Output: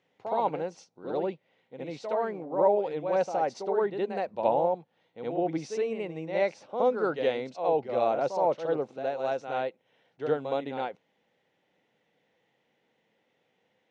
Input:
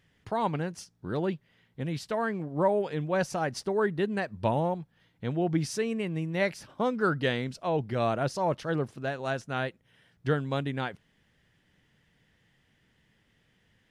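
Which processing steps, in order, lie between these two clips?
speaker cabinet 310–5700 Hz, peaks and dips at 510 Hz +7 dB, 790 Hz +6 dB, 1200 Hz -4 dB, 1700 Hz -10 dB, 3100 Hz -6 dB, 4900 Hz -9 dB; on a send: reverse echo 68 ms -7 dB; on the sum: gain -1 dB

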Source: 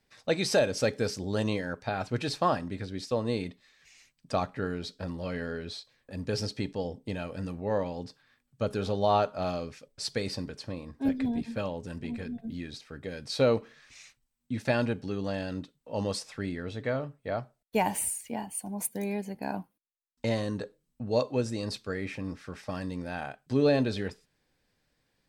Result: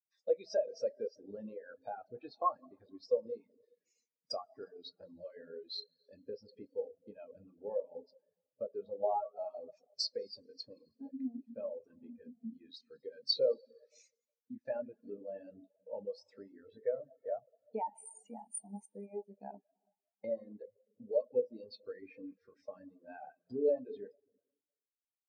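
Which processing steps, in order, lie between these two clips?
high shelf 4300 Hz -6.5 dB; compressor 3:1, threshold -42 dBFS, peak gain reduction 16.5 dB; de-hum 90.04 Hz, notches 7; treble ducked by the level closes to 3000 Hz, closed at -38 dBFS; tone controls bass -11 dB, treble +15 dB; plate-style reverb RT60 2.6 s, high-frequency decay 0.85×, DRR 4 dB; reverb removal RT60 0.56 s; spectral expander 2.5:1; gain +5 dB

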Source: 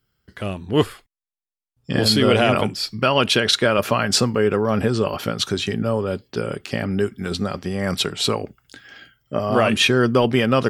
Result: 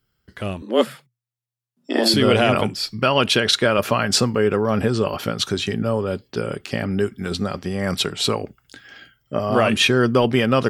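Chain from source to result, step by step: 0.62–2.14 frequency shift +120 Hz

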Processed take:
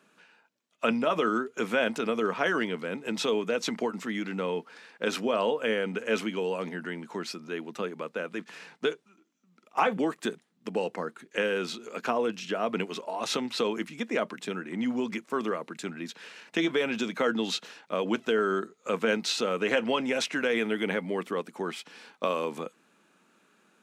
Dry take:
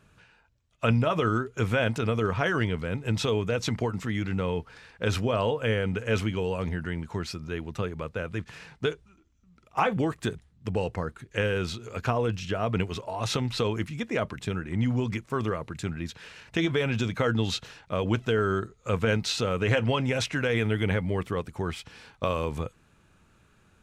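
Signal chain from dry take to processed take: steep high-pass 200 Hz 36 dB/oct

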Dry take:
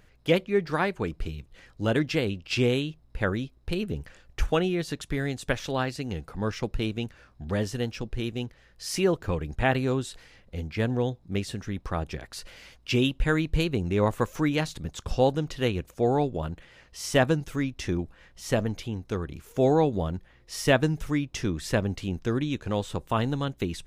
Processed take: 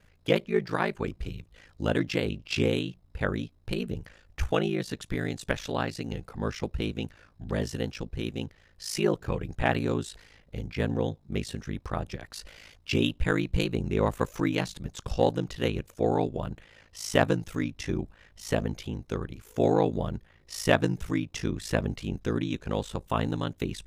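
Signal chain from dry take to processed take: added harmonics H 3 -19 dB, 5 -31 dB, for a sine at -8 dBFS; ring modulator 27 Hz; gain +3 dB

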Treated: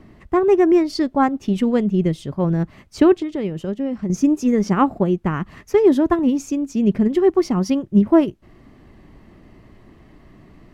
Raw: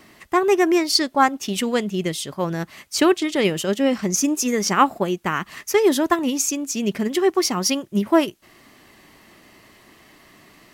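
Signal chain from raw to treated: tilt -4.5 dB/oct; 3.17–4.1 compressor 2.5:1, threshold -22 dBFS, peak gain reduction 10 dB; gain -3 dB

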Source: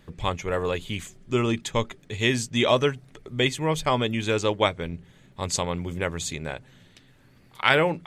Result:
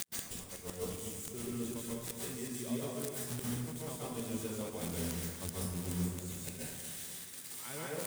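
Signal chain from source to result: switching spikes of -9 dBFS; dynamic EQ 8900 Hz, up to +8 dB, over -36 dBFS, Q 2.5; level quantiser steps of 20 dB; bell 190 Hz +14 dB 2.9 oct; flipped gate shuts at -17 dBFS, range -37 dB; compressor 5:1, threshold -50 dBFS, peak gain reduction 21.5 dB; split-band echo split 1200 Hz, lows 0.242 s, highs 0.367 s, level -9.5 dB; plate-style reverb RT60 1 s, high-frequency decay 0.6×, pre-delay 0.115 s, DRR -5 dB; gain +9 dB

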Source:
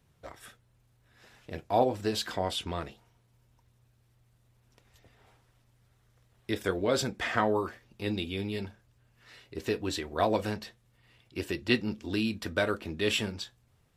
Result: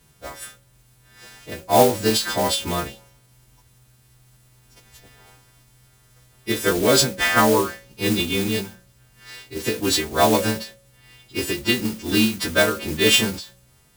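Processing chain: frequency quantiser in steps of 2 st; low shelf 500 Hz +5.5 dB; modulation noise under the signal 12 dB; bell 93 Hz -12 dB 0.22 oct; de-hum 184.5 Hz, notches 3; ending taper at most 150 dB/s; gain +8 dB

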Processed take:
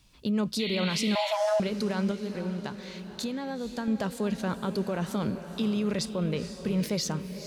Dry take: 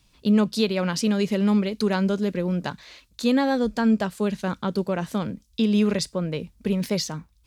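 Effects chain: 2.11–3.88 compressor 10:1, threshold -31 dBFS, peak gain reduction 14.5 dB; limiter -21 dBFS, peak gain reduction 10.5 dB; diffused feedback echo 0.479 s, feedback 47%, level -10 dB; 1.15–1.6 frequency shift +430 Hz; 0.59–1.33 painted sound noise 1900–4500 Hz -36 dBFS

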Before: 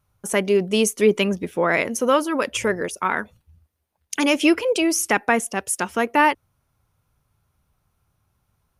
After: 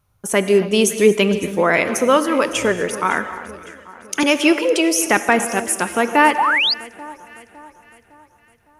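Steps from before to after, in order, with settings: 4.23–4.95 HPF 270 Hz; echo with dull and thin repeats by turns 0.279 s, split 1500 Hz, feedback 67%, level -13.5 dB; non-linear reverb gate 0.28 s flat, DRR 10.5 dB; 6.38–6.74 painted sound rise 740–5100 Hz -20 dBFS; gain +3.5 dB

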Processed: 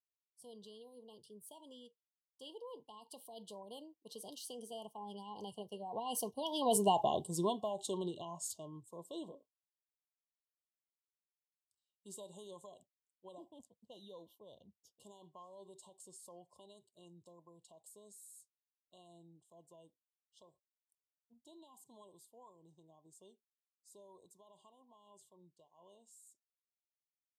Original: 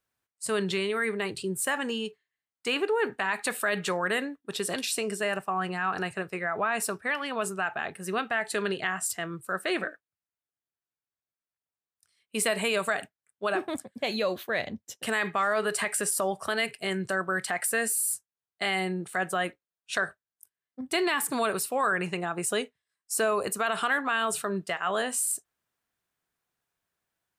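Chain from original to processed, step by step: Doppler pass-by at 6.95, 33 m/s, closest 6.4 m; brick-wall FIR band-stop 1100–2800 Hz; gain +5.5 dB

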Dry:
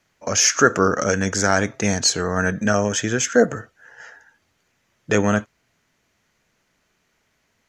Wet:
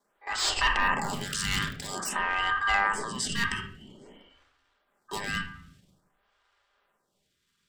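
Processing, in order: 1.04–1.88 cycle switcher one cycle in 2, inverted; in parallel at +1.5 dB: level quantiser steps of 17 dB; on the sum: ring modulator 1400 Hz; hard clip -9.5 dBFS, distortion -10 dB; transient shaper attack -6 dB, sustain +7 dB; on a send at -4 dB: reverb RT60 0.80 s, pre-delay 5 ms; on the sum: photocell phaser 0.5 Hz; gain -6 dB

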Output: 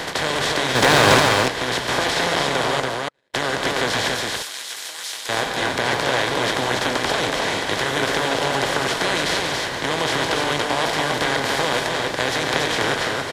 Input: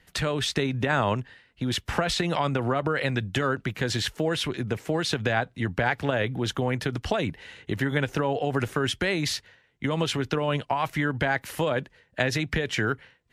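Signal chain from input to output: per-bin compression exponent 0.2; 0.75–1.2 sample leveller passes 3; 4.14–5.29 differentiator; flange 1.1 Hz, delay 5.9 ms, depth 4.4 ms, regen -76%; 2.8–3.34 gate -14 dBFS, range -55 dB; tone controls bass -7 dB, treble +2 dB; notch 1300 Hz, Q 16; loudspeakers at several distances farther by 31 m -10 dB, 49 m -10 dB, 63 m -11 dB, 97 m -3 dB; gain -1 dB

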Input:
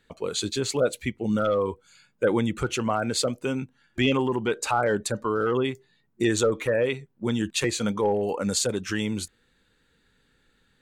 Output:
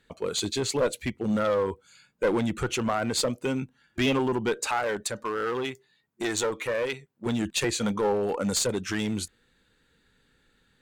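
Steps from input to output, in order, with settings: one-sided clip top -22 dBFS; 4.67–7.26 low shelf 450 Hz -8.5 dB

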